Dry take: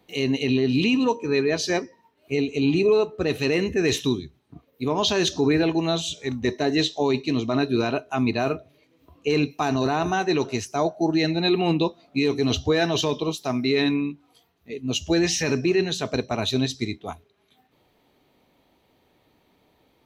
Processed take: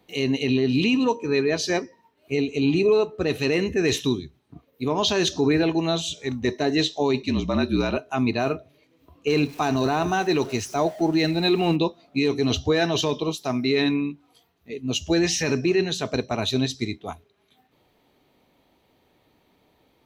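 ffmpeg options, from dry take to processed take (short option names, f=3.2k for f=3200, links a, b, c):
-filter_complex "[0:a]asettb=1/sr,asplit=3[a][b][c];[a]atrim=end=7.224[d];[b]atrim=start=7.22:end=7.97,asetpts=PTS-STARTPTS,afade=t=in:d=0.004:c=qsin,afade=t=out:st=0.746:d=0.004:c=qsin,afreqshift=-47[e];[c]atrim=start=7.966[f];[d][e]acrossfade=d=0.004:c1=hsin:c2=qsin[g];[g][f]acrossfade=d=0.004:c1=qsin:c2=hsin,asettb=1/sr,asplit=3[h][i][j];[h]atrim=end=9.274[k];[i]atrim=start=9.27:end=11.76,asetpts=PTS-STARTPTS,afade=t=in:d=0.004:c=qsin,afade=t=out:st=2.486:d=0.004:c=qsin,aeval=exprs='val(0)+0.5*0.0106*sgn(val(0))':c=same[l];[j]atrim=start=11.756[m];[k][l]acrossfade=d=0.004:c1=hsin:c2=qsin[n];[n][m]acrossfade=d=0.004:c1=qsin:c2=hsin"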